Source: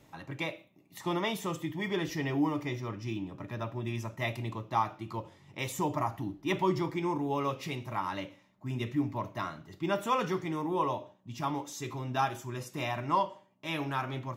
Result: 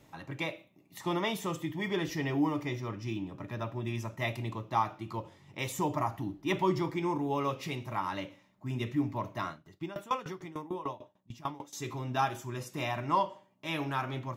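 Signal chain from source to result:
0:09.51–0:11.73: tremolo with a ramp in dB decaying 6.7 Hz, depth 20 dB

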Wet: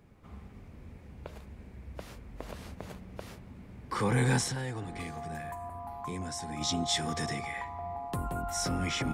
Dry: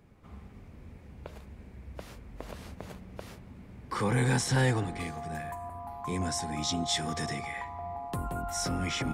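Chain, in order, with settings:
0:04.47–0:06.61: downward compressor 4 to 1, threshold −35 dBFS, peak gain reduction 11 dB

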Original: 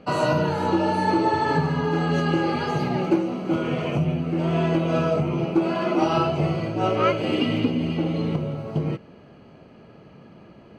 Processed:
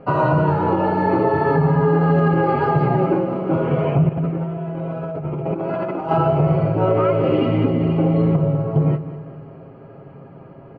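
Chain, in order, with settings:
low-pass filter 1,300 Hz 12 dB per octave
parametric band 250 Hz −10.5 dB 0.2 octaves
comb filter 7.4 ms, depth 58%
0:04.09–0:06.11: compressor whose output falls as the input rises −32 dBFS, ratio −1
repeating echo 199 ms, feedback 56%, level −15 dB
boost into a limiter +13.5 dB
level −7 dB

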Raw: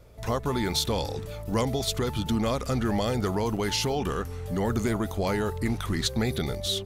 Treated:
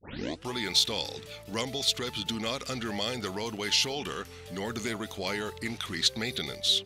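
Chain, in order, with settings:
turntable start at the beginning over 0.54 s
meter weighting curve D
level −6.5 dB

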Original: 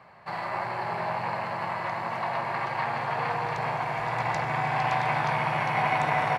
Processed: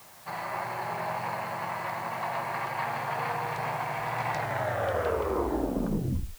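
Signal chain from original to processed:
turntable brake at the end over 2.09 s
background noise white −51 dBFS
level −2.5 dB

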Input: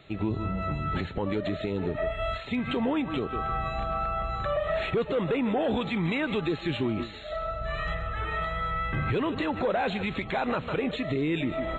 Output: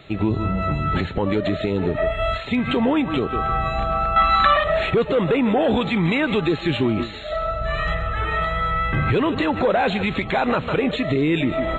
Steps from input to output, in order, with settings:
0:04.16–0:04.64: octave-band graphic EQ 125/250/500/1,000/2,000/4,000 Hz −12/+11/−11/+11/+7/+12 dB
level +8 dB

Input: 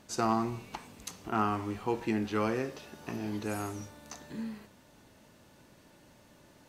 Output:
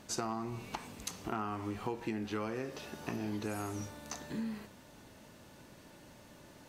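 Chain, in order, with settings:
downward compressor 6 to 1, threshold −37 dBFS, peak gain reduction 13 dB
level +3 dB

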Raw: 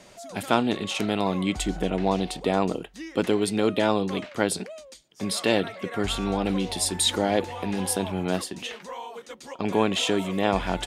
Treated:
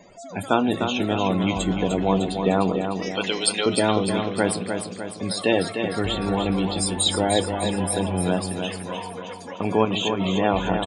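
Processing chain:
0:03.02–0:03.66: meter weighting curve ITU-R 468
0:09.85–0:10.36: compressor whose output falls as the input rises −28 dBFS, ratio −1
spectral peaks only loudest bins 64
repeating echo 302 ms, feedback 54%, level −6.5 dB
on a send at −11.5 dB: convolution reverb RT60 0.25 s, pre-delay 4 ms
on the sum: level +2 dB

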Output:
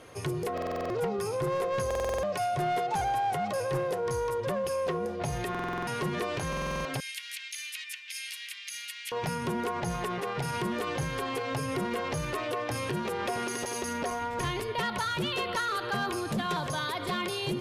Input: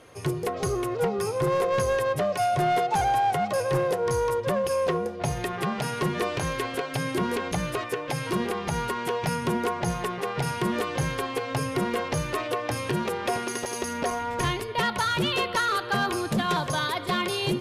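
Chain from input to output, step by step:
0:07.00–0:09.12: Butterworth high-pass 2,100 Hz 36 dB per octave
brickwall limiter −25.5 dBFS, peak gain reduction 6.5 dB
buffer that repeats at 0:00.53/0:01.86/0:05.50/0:06.48, samples 2,048, times 7
level +1 dB

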